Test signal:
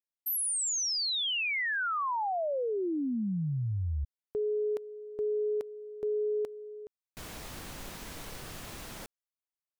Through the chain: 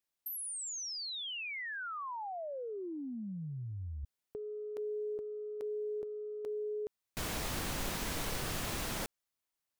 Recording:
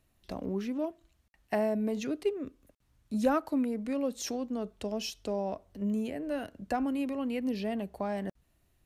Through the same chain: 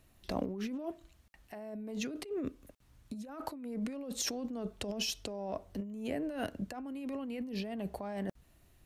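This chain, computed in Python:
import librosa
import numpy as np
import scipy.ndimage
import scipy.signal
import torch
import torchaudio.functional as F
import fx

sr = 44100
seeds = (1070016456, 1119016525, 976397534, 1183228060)

y = fx.over_compress(x, sr, threshold_db=-39.0, ratio=-1.0)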